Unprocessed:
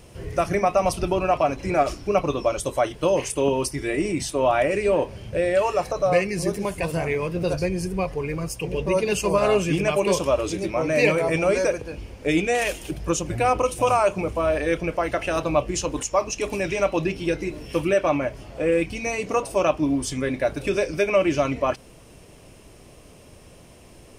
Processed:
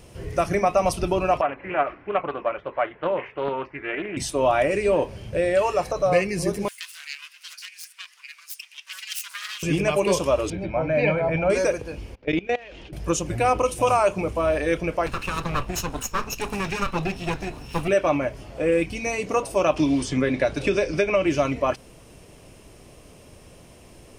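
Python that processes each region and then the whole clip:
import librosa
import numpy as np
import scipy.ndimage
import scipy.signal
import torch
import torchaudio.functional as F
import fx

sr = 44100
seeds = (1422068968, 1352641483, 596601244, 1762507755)

y = fx.chain(x, sr, fx.steep_lowpass(hz=2100.0, slope=36),
    fx.tilt_eq(slope=4.5),
    fx.doppler_dist(depth_ms=0.27), at=(1.41, 4.17))
y = fx.chain(y, sr, fx.self_delay(depth_ms=0.31),
    fx.bessel_highpass(hz=2500.0, order=6), at=(6.68, 9.63))
y = fx.chain(y, sr, fx.air_absorb(metres=410.0),
    fx.comb(ms=1.3, depth=0.54), at=(10.5, 11.5))
y = fx.chain(y, sr, fx.lowpass(hz=4300.0, slope=24),
    fx.level_steps(step_db=21), at=(12.15, 12.93))
y = fx.chain(y, sr, fx.lower_of_two(delay_ms=0.75),
    fx.notch(hz=320.0, q=5.7), at=(15.06, 17.88))
y = fx.chain(y, sr, fx.lowpass(hz=6200.0, slope=12),
    fx.band_squash(depth_pct=100), at=(19.76, 21.26))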